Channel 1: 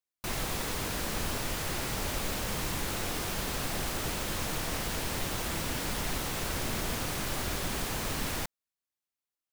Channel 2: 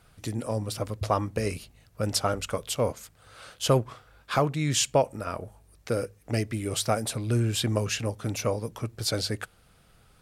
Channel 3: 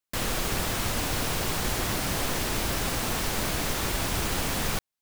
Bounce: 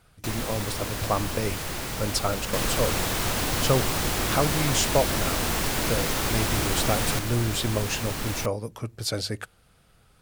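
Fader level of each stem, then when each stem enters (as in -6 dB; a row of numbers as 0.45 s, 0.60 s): +1.5 dB, -0.5 dB, +1.0 dB; 0.00 s, 0.00 s, 2.40 s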